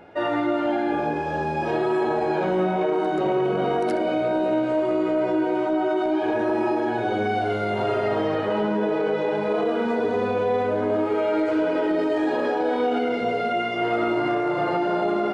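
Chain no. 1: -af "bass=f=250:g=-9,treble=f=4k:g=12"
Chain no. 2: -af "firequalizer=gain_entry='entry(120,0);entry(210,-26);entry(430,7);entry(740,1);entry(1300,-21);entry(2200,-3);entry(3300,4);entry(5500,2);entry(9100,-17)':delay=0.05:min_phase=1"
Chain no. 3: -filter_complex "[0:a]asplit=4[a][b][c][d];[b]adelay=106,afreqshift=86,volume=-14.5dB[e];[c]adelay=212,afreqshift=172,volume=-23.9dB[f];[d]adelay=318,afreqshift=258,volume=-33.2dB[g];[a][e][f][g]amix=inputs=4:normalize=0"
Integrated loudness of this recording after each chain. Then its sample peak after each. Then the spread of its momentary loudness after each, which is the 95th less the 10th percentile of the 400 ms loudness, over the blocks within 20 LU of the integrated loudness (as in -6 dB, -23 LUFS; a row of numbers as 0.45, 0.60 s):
-24.5, -22.0, -23.0 LUFS; -13.0, -9.5, -11.5 dBFS; 1, 5, 2 LU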